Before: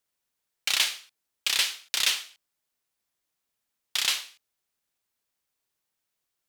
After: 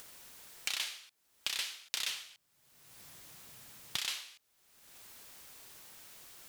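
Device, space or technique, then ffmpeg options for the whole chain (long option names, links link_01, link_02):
upward and downward compression: -filter_complex "[0:a]acompressor=mode=upward:threshold=-31dB:ratio=2.5,acompressor=threshold=-35dB:ratio=4,asettb=1/sr,asplit=3[link_01][link_02][link_03];[link_01]atrim=end=2.084[link_04];[link_02]atrim=start=2.08:end=3.97,asetpts=PTS-STARTPTS,afade=type=in:duration=0.004:curve=qsin,afade=type=out:start_time=1.886:duration=0.004:curve=qsin,equalizer=frequency=130:width=1.5:gain=11.5[link_05];[link_03]atrim=start=3.966[link_06];[link_04][link_05]acrossfade=duration=0.004:curve1=hsin:curve2=qsin[link_07];[link_07][link_06]acrossfade=duration=0.004:curve1=qsin:curve2=hsin"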